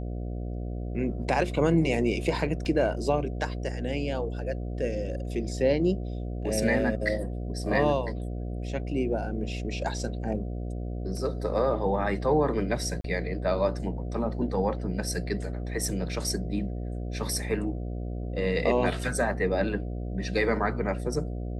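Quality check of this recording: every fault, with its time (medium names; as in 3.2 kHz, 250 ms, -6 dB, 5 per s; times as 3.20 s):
buzz 60 Hz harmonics 12 -33 dBFS
2.65 s: dropout 3.8 ms
13.01–13.04 s: dropout 33 ms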